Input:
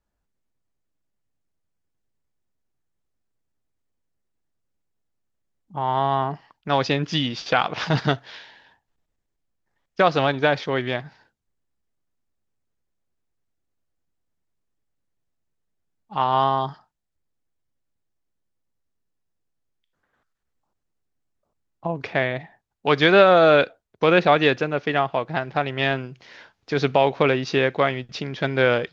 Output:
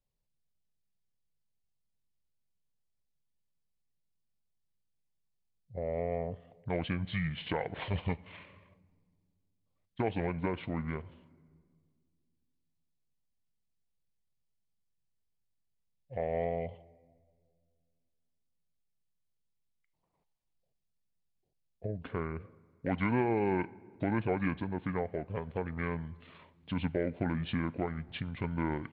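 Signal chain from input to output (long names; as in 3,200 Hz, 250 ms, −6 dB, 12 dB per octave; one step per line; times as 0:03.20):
octave-band graphic EQ 125/250/500/2,000 Hz −3/+4/−7/−10 dB
downward compressor 1.5 to 1, threshold −31 dBFS, peak gain reduction 6.5 dB
pitch shifter −8 semitones
on a send: convolution reverb RT60 2.0 s, pre-delay 5 ms, DRR 21 dB
on the sum: level −5 dB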